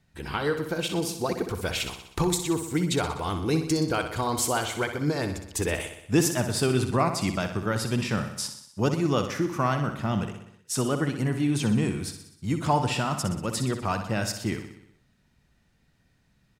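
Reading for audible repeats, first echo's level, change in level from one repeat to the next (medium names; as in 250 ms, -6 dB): 6, -9.0 dB, -4.5 dB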